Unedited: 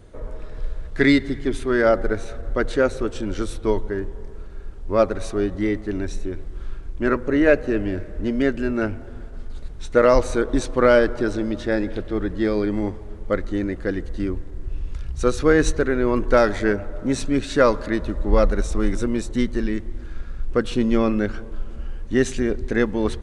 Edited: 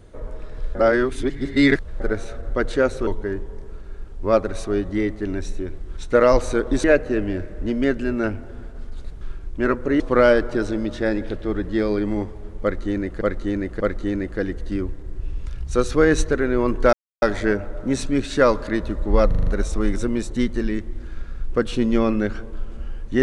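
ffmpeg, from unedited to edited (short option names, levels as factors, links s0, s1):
-filter_complex "[0:a]asplit=16[s0][s1][s2][s3][s4][s5][s6][s7][s8][s9][s10][s11][s12][s13][s14][s15];[s0]atrim=end=0.752[s16];[s1]atrim=start=0.748:end=2.002,asetpts=PTS-STARTPTS,areverse[s17];[s2]atrim=start=1.998:end=3.072[s18];[s3]atrim=start=3.728:end=6.632[s19];[s4]atrim=start=9.788:end=10.662[s20];[s5]atrim=start=7.418:end=9.792[s21];[s6]atrim=start=6.628:end=7.422[s22];[s7]atrim=start=10.658:end=13.872[s23];[s8]atrim=start=13.278:end=13.872[s24];[s9]atrim=start=13.278:end=16.41,asetpts=PTS-STARTPTS,afade=t=out:st=3.128:d=0.004:c=hsin,apad=pad_dur=0.29[s25];[s10]atrim=start=16.41:end=18.502,asetpts=PTS-STARTPTS,afade=t=in:d=0.004:c=hsin[s26];[s11]atrim=start=18.458:end=18.502[s27];[s12]atrim=start=18.458:end=18.502[s28];[s13]atrim=start=18.458:end=18.502[s29];[s14]atrim=start=18.458:end=18.502[s30];[s15]atrim=start=18.458[s31];[s16][s17]acrossfade=d=0.004:c1=hsin:c2=hsin[s32];[s32][s18]acrossfade=d=0.004:c1=hsin:c2=hsin[s33];[s33][s19]acrossfade=d=0.004:c1=hsin:c2=hsin[s34];[s34][s20]acrossfade=d=0.004:c1=hsin:c2=hsin[s35];[s35][s21]acrossfade=d=0.004:c1=hsin:c2=hsin[s36];[s36][s22]acrossfade=d=0.004:c1=hsin:c2=hsin[s37];[s37][s23]acrossfade=d=0.004:c1=hsin:c2=hsin[s38];[s38][s24]acrossfade=d=0.004:c1=hsin:c2=hsin[s39];[s25][s26]concat=n=2:v=0:a=1[s40];[s39][s40]acrossfade=d=0.004:c1=hsin:c2=hsin[s41];[s41][s27]acrossfade=d=0.004:c1=hsin:c2=hsin[s42];[s42][s28]acrossfade=d=0.004:c1=hsin:c2=hsin[s43];[s43][s29]acrossfade=d=0.004:c1=hsin:c2=hsin[s44];[s44][s30]acrossfade=d=0.004:c1=hsin:c2=hsin[s45];[s45][s31]acrossfade=d=0.004:c1=hsin:c2=hsin"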